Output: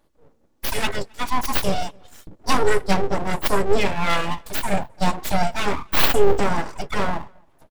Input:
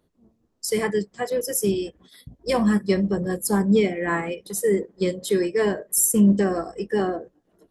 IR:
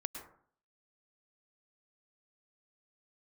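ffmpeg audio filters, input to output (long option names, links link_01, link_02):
-filter_complex "[0:a]aecho=1:1:3.5:0.95,aeval=exprs='abs(val(0))':channel_layout=same,asplit=2[link_01][link_02];[link_02]adelay=268.2,volume=-30dB,highshelf=frequency=4000:gain=-6.04[link_03];[link_01][link_03]amix=inputs=2:normalize=0,volume=3.5dB"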